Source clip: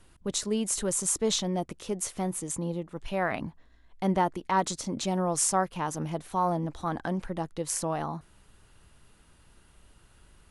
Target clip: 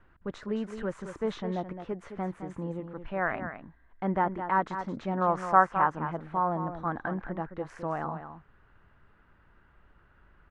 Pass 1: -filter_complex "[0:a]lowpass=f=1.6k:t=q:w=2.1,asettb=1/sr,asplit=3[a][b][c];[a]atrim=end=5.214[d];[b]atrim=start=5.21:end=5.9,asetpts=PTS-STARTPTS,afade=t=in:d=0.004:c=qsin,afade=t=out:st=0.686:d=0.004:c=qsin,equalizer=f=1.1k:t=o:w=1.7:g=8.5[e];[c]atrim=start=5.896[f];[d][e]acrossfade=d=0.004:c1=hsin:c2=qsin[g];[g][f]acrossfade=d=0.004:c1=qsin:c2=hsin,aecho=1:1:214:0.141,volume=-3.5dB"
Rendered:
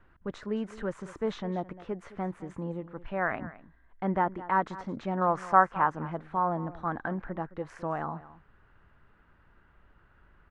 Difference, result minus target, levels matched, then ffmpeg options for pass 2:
echo-to-direct -7.5 dB
-filter_complex "[0:a]lowpass=f=1.6k:t=q:w=2.1,asettb=1/sr,asplit=3[a][b][c];[a]atrim=end=5.214[d];[b]atrim=start=5.21:end=5.9,asetpts=PTS-STARTPTS,afade=t=in:d=0.004:c=qsin,afade=t=out:st=0.686:d=0.004:c=qsin,equalizer=f=1.1k:t=o:w=1.7:g=8.5[e];[c]atrim=start=5.896[f];[d][e]acrossfade=d=0.004:c1=hsin:c2=qsin[g];[g][f]acrossfade=d=0.004:c1=qsin:c2=hsin,aecho=1:1:214:0.335,volume=-3.5dB"

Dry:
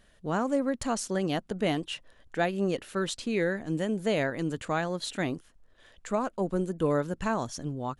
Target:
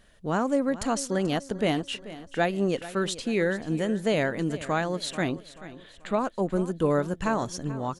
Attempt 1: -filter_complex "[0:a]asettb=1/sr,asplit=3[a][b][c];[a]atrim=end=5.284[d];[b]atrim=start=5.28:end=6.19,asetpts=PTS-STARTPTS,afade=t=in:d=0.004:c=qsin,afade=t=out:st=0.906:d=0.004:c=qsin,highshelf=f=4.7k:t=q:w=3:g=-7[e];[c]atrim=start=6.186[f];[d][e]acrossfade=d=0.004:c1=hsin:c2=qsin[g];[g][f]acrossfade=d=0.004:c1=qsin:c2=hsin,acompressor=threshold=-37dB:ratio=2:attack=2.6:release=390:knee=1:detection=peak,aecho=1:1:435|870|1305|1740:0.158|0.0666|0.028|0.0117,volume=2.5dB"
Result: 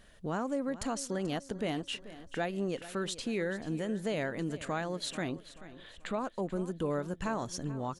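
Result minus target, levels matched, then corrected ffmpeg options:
compressor: peak gain reduction +10 dB
-filter_complex "[0:a]asettb=1/sr,asplit=3[a][b][c];[a]atrim=end=5.284[d];[b]atrim=start=5.28:end=6.19,asetpts=PTS-STARTPTS,afade=t=in:d=0.004:c=qsin,afade=t=out:st=0.906:d=0.004:c=qsin,highshelf=f=4.7k:t=q:w=3:g=-7[e];[c]atrim=start=6.186[f];[d][e]acrossfade=d=0.004:c1=hsin:c2=qsin[g];[g][f]acrossfade=d=0.004:c1=qsin:c2=hsin,aecho=1:1:435|870|1305|1740:0.158|0.0666|0.028|0.0117,volume=2.5dB"

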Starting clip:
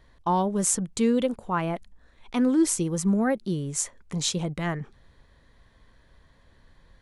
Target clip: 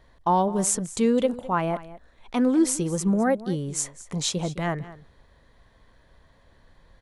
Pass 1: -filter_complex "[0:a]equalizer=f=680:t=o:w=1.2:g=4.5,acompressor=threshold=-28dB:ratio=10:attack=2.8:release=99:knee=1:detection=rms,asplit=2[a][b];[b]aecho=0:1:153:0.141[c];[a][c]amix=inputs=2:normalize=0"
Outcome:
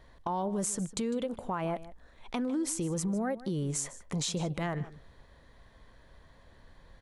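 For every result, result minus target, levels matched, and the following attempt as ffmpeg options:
compressor: peak gain reduction +13.5 dB; echo 57 ms early
-filter_complex "[0:a]equalizer=f=680:t=o:w=1.2:g=4.5,asplit=2[a][b];[b]aecho=0:1:153:0.141[c];[a][c]amix=inputs=2:normalize=0"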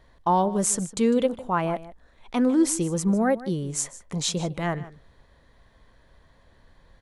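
echo 57 ms early
-filter_complex "[0:a]equalizer=f=680:t=o:w=1.2:g=4.5,asplit=2[a][b];[b]aecho=0:1:210:0.141[c];[a][c]amix=inputs=2:normalize=0"

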